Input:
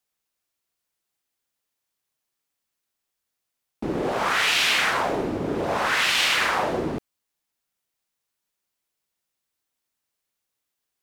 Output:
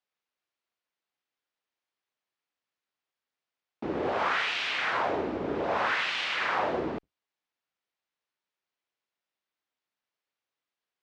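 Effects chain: octaver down 2 oct, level -5 dB; HPF 420 Hz 6 dB/oct; high shelf 2300 Hz +11 dB; compressor, threshold -17 dBFS, peak gain reduction 6.5 dB; tape spacing loss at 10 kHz 37 dB

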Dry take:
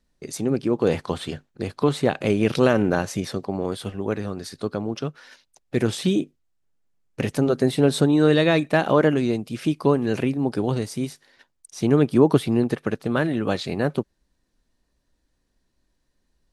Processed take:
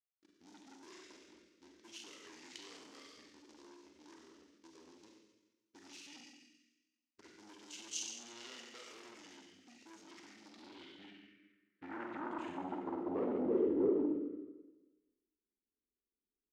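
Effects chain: low-pass opened by the level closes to 310 Hz, open at -14 dBFS; dynamic EQ 380 Hz, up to +5 dB, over -31 dBFS, Q 2.6; sample leveller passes 2; compressor 8:1, threshold -15 dBFS, peak gain reduction 9.5 dB; fixed phaser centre 430 Hz, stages 4; Schroeder reverb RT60 1.2 s, combs from 33 ms, DRR -1 dB; soft clip -18 dBFS, distortion -10 dB; pitch shift -4.5 st; band-pass sweep 6000 Hz -> 430 Hz, 10.34–13.64; gain -3.5 dB

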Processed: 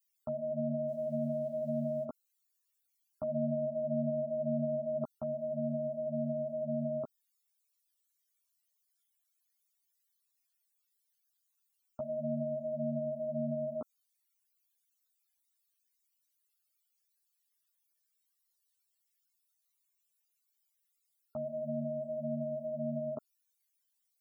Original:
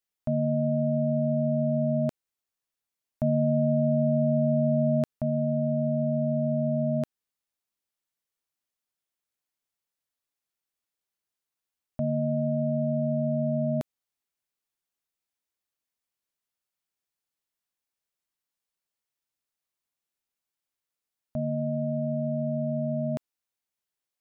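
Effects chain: in parallel at +2 dB: limiter -25.5 dBFS, peak gain reduction 9.5 dB; on the sum: dynamic EQ 1100 Hz, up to -3 dB, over -34 dBFS, Q 0.76; loudest bins only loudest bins 64; tilt +4.5 dB/oct; 0.88–2.04 short-mantissa float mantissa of 6-bit; ensemble effect; gain -2 dB

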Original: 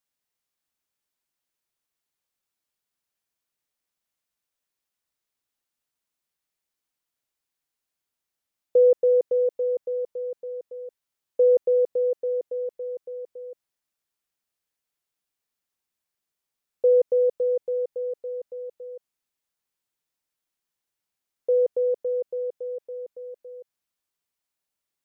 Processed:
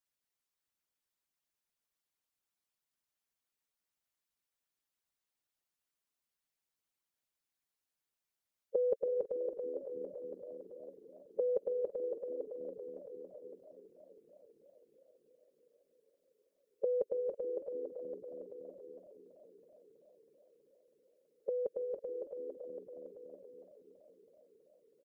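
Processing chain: frequency-shifting echo 0.302 s, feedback 52%, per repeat -77 Hz, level -20 dB; harmonic-percussive split harmonic -15 dB; warbling echo 0.326 s, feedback 77%, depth 104 cents, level -17 dB; gain -1 dB

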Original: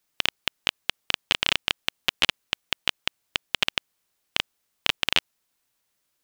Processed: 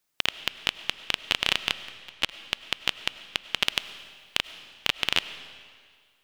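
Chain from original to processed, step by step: 1.84–2.42 level quantiser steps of 21 dB; 3.63–4.37 high shelf 5000 Hz +6.5 dB; digital reverb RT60 1.9 s, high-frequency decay 0.95×, pre-delay 60 ms, DRR 13.5 dB; gain -1.5 dB

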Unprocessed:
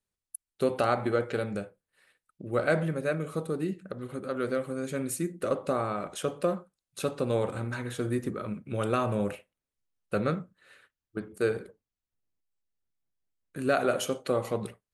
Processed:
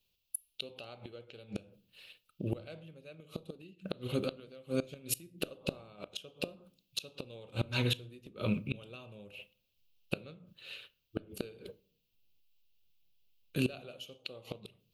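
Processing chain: EQ curve 150 Hz 0 dB, 290 Hz -5 dB, 470 Hz -1 dB, 810 Hz -5 dB, 1900 Hz -11 dB, 2700 Hz +13 dB, 4500 Hz +7 dB, 9200 Hz -9 dB, 13000 Hz +8 dB; flipped gate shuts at -25 dBFS, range -27 dB; on a send: reverb RT60 0.55 s, pre-delay 3 ms, DRR 18.5 dB; on the sum: gain +6.5 dB

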